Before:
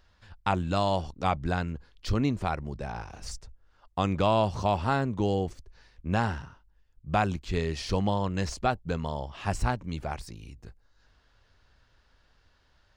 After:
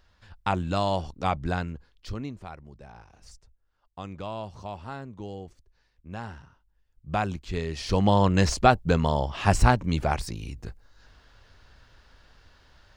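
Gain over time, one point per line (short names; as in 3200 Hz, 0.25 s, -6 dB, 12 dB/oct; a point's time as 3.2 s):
1.57 s +0.5 dB
2.43 s -11.5 dB
6.1 s -11.5 dB
7.11 s -1.5 dB
7.7 s -1.5 dB
8.2 s +8.5 dB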